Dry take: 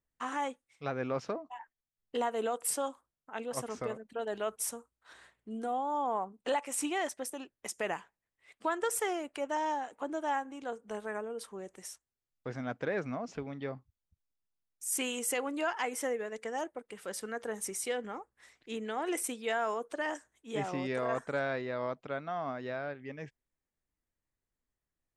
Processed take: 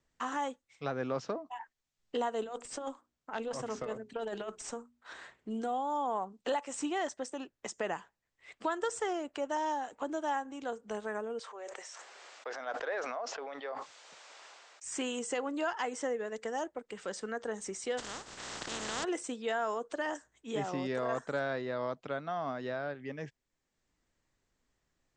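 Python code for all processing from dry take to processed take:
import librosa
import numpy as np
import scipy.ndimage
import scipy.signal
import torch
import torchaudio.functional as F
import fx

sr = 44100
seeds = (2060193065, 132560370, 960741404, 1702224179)

y = fx.chain(x, sr, fx.over_compress(threshold_db=-36.0, ratio=-0.5),
    fx.hum_notches(base_hz=60, count=7),
    fx.tube_stage(drive_db=27.0, bias=0.25), at=(2.42, 5.61))
y = fx.chain(y, sr, fx.highpass(hz=520.0, slope=24),
    fx.high_shelf(hz=7900.0, db=-10.0),
    fx.sustainer(db_per_s=26.0), at=(11.39, 14.84))
y = fx.spec_flatten(y, sr, power=0.18, at=(17.97, 19.03), fade=0.02)
y = fx.pre_swell(y, sr, db_per_s=25.0, at=(17.97, 19.03), fade=0.02)
y = scipy.signal.sosfilt(scipy.signal.butter(12, 8100.0, 'lowpass', fs=sr, output='sos'), y)
y = fx.dynamic_eq(y, sr, hz=2300.0, q=3.7, threshold_db=-58.0, ratio=4.0, max_db=-7)
y = fx.band_squash(y, sr, depth_pct=40)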